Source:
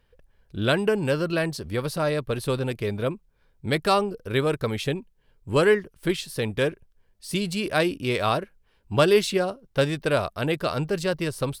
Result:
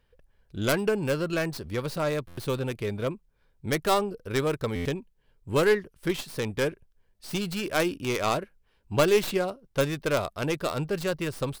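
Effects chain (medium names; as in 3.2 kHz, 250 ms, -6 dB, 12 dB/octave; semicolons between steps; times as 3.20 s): tracing distortion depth 0.29 ms; buffer glitch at 2.27/4.75 s, samples 512, times 8; trim -3 dB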